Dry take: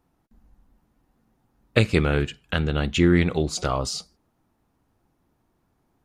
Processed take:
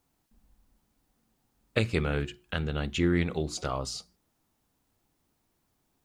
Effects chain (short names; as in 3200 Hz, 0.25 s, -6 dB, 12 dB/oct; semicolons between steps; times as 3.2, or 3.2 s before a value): requantised 12-bit, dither triangular; notches 60/120/180/240/300/360 Hz; gain -7 dB